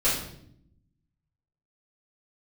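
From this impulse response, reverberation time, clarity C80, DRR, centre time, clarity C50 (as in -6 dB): 0.70 s, 7.5 dB, -11.5 dB, 44 ms, 3.5 dB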